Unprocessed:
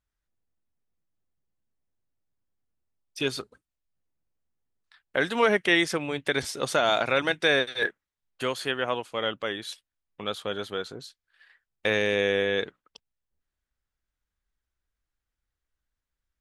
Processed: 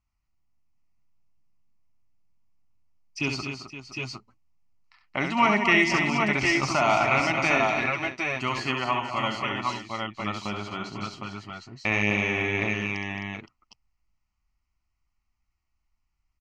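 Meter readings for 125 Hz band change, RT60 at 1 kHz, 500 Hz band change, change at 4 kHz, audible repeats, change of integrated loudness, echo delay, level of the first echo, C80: +8.0 dB, no reverb audible, −3.0 dB, −2.5 dB, 5, +1.5 dB, 68 ms, −6.0 dB, no reverb audible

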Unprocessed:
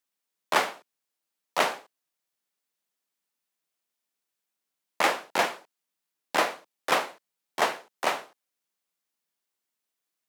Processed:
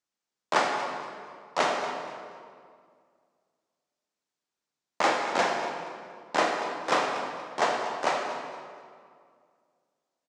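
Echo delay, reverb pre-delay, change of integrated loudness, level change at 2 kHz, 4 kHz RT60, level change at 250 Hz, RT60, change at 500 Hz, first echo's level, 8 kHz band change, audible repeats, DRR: 237 ms, 19 ms, −0.5 dB, −1.0 dB, 1.5 s, +3.0 dB, 2.1 s, +2.5 dB, −14.0 dB, −2.5 dB, 2, 0.5 dB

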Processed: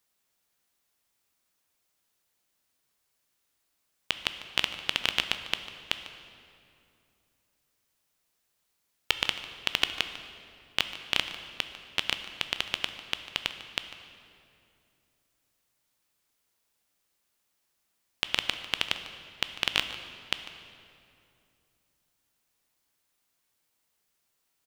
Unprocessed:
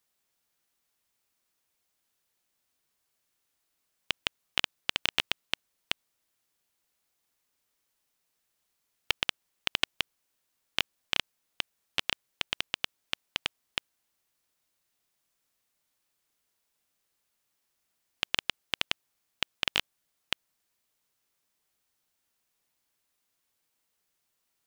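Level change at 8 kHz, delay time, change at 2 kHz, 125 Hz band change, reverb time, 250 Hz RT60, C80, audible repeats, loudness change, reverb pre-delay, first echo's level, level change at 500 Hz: +2.0 dB, 148 ms, +2.0 dB, +2.5 dB, 2.6 s, 3.2 s, 10.0 dB, 1, +2.0 dB, 11 ms, −16.0 dB, +2.0 dB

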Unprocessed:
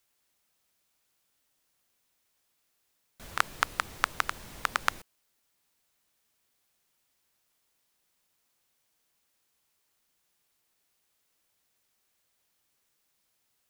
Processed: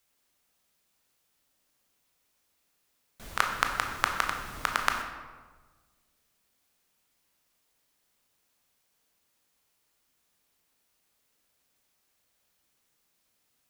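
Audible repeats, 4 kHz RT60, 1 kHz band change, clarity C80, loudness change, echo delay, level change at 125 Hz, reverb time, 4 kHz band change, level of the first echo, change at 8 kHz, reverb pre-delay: no echo audible, 0.85 s, +2.5 dB, 7.0 dB, +1.5 dB, no echo audible, +3.0 dB, 1.4 s, +1.5 dB, no echo audible, +1.0 dB, 17 ms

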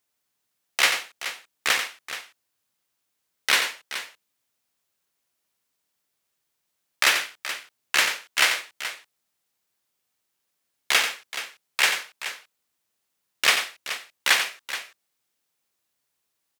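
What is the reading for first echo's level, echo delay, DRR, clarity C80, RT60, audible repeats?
−8.5 dB, 90 ms, no reverb audible, no reverb audible, no reverb audible, 2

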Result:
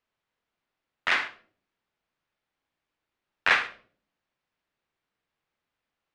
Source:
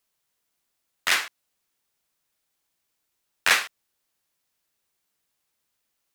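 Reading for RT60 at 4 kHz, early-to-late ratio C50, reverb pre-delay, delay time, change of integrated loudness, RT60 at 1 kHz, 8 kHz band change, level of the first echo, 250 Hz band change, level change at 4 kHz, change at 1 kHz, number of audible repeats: 0.35 s, 13.0 dB, 37 ms, no echo audible, −2.5 dB, 0.40 s, −18.0 dB, no echo audible, +1.0 dB, −6.0 dB, 0.0 dB, no echo audible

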